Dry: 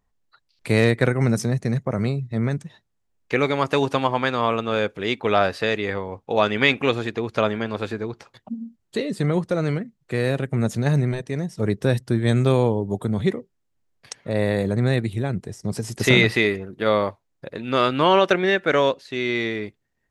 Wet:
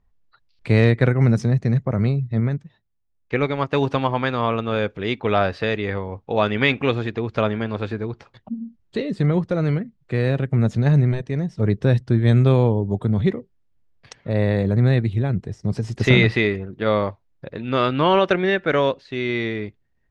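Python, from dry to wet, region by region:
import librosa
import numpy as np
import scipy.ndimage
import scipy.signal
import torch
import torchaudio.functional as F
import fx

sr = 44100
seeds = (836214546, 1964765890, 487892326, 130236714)

y = fx.chain(x, sr, fx.high_shelf(hz=10000.0, db=-11.0),
    fx.upward_expand(threshold_db=-35.0, expansion=1.5), at=(2.4, 3.75))
y = scipy.signal.sosfilt(scipy.signal.butter(2, 4400.0, 'lowpass', fs=sr, output='sos'), y)
y = fx.low_shelf(y, sr, hz=130.0, db=11.5)
y = y * librosa.db_to_amplitude(-1.0)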